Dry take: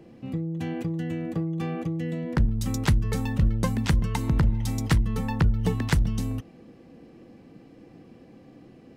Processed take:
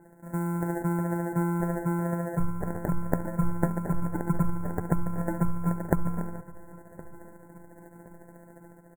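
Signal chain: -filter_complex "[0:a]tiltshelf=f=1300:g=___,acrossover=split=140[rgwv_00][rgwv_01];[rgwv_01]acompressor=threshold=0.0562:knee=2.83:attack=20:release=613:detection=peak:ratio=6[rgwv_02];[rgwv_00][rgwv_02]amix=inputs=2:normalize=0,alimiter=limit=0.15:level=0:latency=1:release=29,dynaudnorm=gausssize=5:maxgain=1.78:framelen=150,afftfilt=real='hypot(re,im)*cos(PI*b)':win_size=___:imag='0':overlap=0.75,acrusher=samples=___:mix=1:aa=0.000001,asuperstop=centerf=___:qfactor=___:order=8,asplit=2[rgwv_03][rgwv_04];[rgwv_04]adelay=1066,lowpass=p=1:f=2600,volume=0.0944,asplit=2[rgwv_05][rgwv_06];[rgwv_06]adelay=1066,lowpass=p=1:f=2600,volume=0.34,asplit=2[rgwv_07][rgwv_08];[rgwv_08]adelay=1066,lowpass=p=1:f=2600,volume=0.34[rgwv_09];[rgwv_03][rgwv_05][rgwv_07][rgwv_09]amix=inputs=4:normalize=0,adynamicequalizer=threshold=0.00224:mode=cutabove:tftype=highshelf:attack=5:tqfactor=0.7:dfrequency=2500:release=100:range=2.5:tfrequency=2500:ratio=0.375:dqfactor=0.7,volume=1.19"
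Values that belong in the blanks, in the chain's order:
-4, 1024, 37, 3800, 0.62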